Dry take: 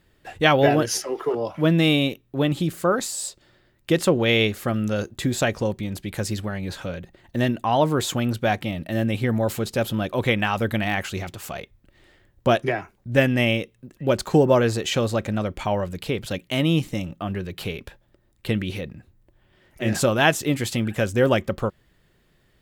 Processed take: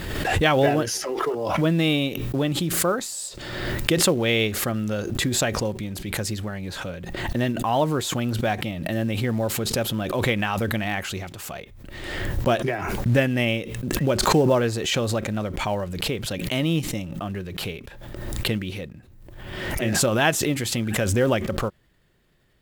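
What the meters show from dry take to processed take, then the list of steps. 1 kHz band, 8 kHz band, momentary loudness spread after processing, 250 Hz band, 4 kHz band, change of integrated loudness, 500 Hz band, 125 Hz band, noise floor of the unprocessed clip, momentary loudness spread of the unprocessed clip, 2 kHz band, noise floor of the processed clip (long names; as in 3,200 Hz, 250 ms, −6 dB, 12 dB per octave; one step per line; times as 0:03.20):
−1.0 dB, +4.0 dB, 12 LU, −1.5 dB, +1.0 dB, −1.0 dB, −2.0 dB, −0.5 dB, −63 dBFS, 12 LU, −1.0 dB, −47 dBFS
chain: in parallel at −8 dB: floating-point word with a short mantissa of 2 bits
on the sum: background raised ahead of every attack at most 36 dB per second
level −5.5 dB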